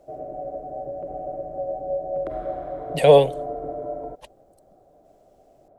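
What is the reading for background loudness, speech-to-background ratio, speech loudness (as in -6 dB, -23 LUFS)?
-31.5 LUFS, 14.5 dB, -17.0 LUFS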